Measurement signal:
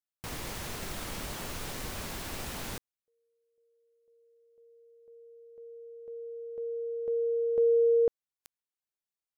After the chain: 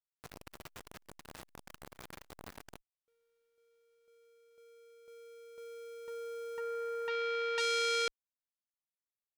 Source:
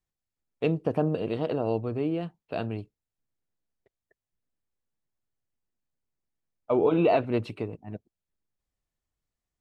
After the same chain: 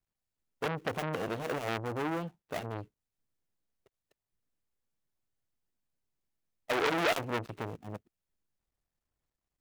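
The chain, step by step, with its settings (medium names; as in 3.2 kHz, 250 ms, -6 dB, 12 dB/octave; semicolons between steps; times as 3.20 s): dead-time distortion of 0.27 ms; transformer saturation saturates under 2.9 kHz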